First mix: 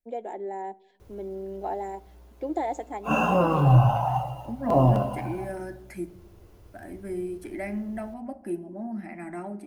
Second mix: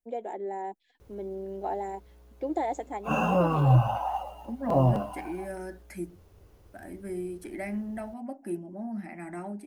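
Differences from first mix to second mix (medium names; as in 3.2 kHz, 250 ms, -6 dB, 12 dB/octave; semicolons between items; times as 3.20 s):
second voice: add tone controls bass 0 dB, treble +3 dB; reverb: off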